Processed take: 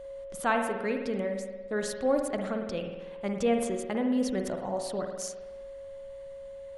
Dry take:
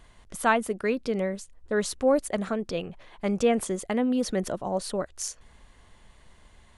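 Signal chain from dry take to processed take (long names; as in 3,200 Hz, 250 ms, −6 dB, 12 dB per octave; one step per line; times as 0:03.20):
steady tone 550 Hz −36 dBFS
spring reverb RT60 1.2 s, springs 51 ms, chirp 70 ms, DRR 4 dB
level −5 dB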